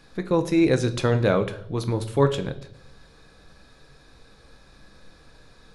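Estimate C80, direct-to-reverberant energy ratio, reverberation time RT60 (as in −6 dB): 17.5 dB, 8.0 dB, 0.65 s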